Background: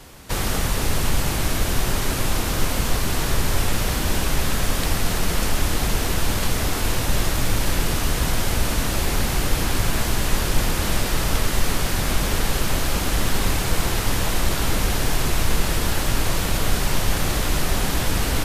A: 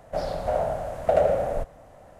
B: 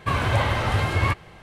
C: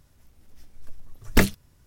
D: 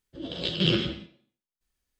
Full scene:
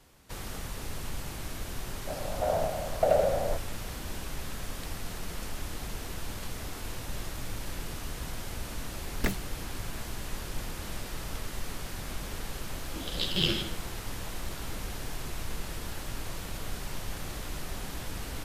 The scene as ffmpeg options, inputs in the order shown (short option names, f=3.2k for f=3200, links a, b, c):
-filter_complex "[0:a]volume=-16dB[a];[1:a]dynaudnorm=f=100:g=9:m=11.5dB[b];[4:a]aemphasis=mode=production:type=75fm[c];[b]atrim=end=2.19,asetpts=PTS-STARTPTS,volume=-11dB,afade=t=in:d=0.004:c=hsin,afade=t=out:st=2.186:d=0.004:c=hsin,adelay=1940[d];[3:a]atrim=end=1.86,asetpts=PTS-STARTPTS,volume=-11.5dB,afade=t=in:d=0.004:c=hsin,afade=t=out:st=1.856:d=0.004:c=hsin,adelay=7870[e];[c]atrim=end=1.99,asetpts=PTS-STARTPTS,volume=-6dB,afade=t=in:d=0.004:c=hsin,afade=t=out:st=1.986:d=0.004:c=hsin,adelay=12760[f];[a][d][e][f]amix=inputs=4:normalize=0"